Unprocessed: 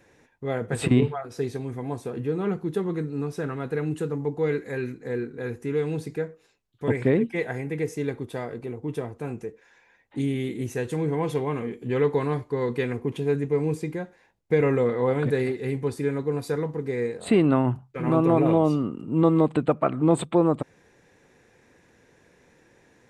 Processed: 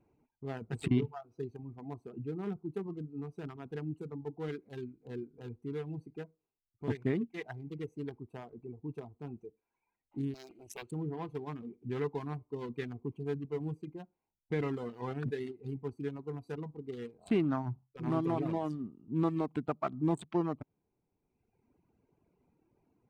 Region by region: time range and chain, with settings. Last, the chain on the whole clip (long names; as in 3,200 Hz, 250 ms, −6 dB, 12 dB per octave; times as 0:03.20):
0:10.34–0:10.91: spectral tilt +3.5 dB per octave + highs frequency-modulated by the lows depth 0.5 ms
whole clip: adaptive Wiener filter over 25 samples; reverb reduction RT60 1.4 s; parametric band 520 Hz −12.5 dB 0.31 octaves; level −8 dB